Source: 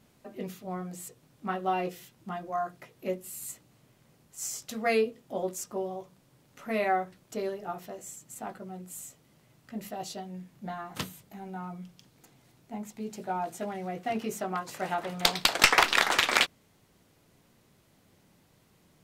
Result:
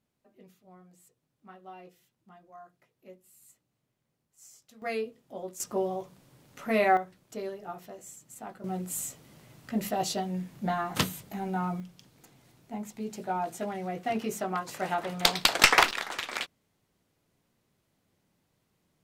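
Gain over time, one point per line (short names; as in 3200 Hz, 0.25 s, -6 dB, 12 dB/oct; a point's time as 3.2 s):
-18 dB
from 4.82 s -7 dB
from 5.6 s +4 dB
from 6.97 s -3.5 dB
from 8.64 s +8 dB
from 11.8 s +1 dB
from 15.91 s -10.5 dB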